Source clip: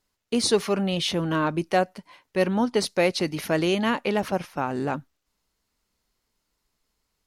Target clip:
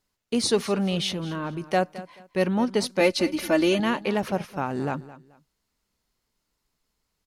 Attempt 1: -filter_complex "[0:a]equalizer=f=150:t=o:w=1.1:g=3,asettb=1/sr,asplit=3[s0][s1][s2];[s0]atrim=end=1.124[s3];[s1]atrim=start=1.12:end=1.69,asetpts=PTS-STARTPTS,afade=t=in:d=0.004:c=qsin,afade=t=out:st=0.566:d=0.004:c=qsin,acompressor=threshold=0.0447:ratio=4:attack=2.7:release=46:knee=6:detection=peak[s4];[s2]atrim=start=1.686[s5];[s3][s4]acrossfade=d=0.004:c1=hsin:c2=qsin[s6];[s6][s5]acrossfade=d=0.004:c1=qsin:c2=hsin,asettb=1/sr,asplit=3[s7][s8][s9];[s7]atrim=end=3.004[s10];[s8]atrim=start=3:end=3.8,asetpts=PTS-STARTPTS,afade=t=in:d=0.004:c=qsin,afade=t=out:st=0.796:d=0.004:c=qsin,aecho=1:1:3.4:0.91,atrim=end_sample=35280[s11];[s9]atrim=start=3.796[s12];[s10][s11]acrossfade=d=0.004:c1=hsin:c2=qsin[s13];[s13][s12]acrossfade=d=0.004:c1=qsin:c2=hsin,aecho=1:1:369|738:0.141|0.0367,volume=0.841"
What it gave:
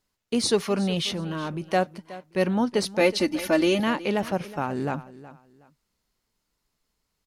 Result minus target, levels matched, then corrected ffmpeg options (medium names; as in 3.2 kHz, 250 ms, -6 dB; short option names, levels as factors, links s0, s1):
echo 153 ms late
-filter_complex "[0:a]equalizer=f=150:t=o:w=1.1:g=3,asettb=1/sr,asplit=3[s0][s1][s2];[s0]atrim=end=1.124[s3];[s1]atrim=start=1.12:end=1.69,asetpts=PTS-STARTPTS,afade=t=in:d=0.004:c=qsin,afade=t=out:st=0.566:d=0.004:c=qsin,acompressor=threshold=0.0447:ratio=4:attack=2.7:release=46:knee=6:detection=peak[s4];[s2]atrim=start=1.686[s5];[s3][s4]acrossfade=d=0.004:c1=hsin:c2=qsin[s6];[s6][s5]acrossfade=d=0.004:c1=qsin:c2=hsin,asettb=1/sr,asplit=3[s7][s8][s9];[s7]atrim=end=3.004[s10];[s8]atrim=start=3:end=3.8,asetpts=PTS-STARTPTS,afade=t=in:d=0.004:c=qsin,afade=t=out:st=0.796:d=0.004:c=qsin,aecho=1:1:3.4:0.91,atrim=end_sample=35280[s11];[s9]atrim=start=3.796[s12];[s10][s11]acrossfade=d=0.004:c1=hsin:c2=qsin[s13];[s13][s12]acrossfade=d=0.004:c1=qsin:c2=hsin,aecho=1:1:216|432:0.141|0.0367,volume=0.841"